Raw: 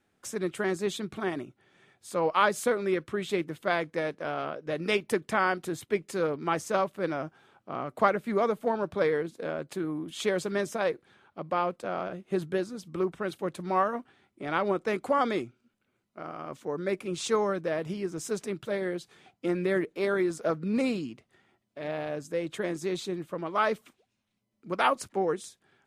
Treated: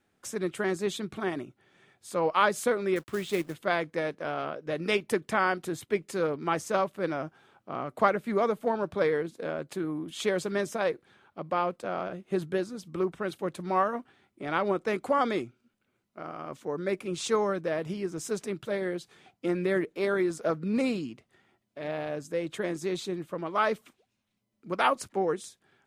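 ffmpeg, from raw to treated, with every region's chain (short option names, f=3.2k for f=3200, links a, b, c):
-filter_complex "[0:a]asettb=1/sr,asplit=3[a][b][c];[a]atrim=end=2.964[d];[b]atrim=start=2.96:end=3.54,asetpts=PTS-STARTPTS,afade=t=in:d=0.004:c=qsin,afade=t=out:st=0.576:d=0.004:c=qsin,acrusher=bits=4:mode=log:mix=0:aa=0.000001,aeval=exprs='sgn(val(0))*max(abs(val(0))-0.0015,0)':c=same[e];[c]atrim=start=3.536[f];[d][e]acrossfade=d=0.004:c1=hsin:c2=qsin[g];[g][f]acrossfade=d=0.004:c1=qsin:c2=hsin"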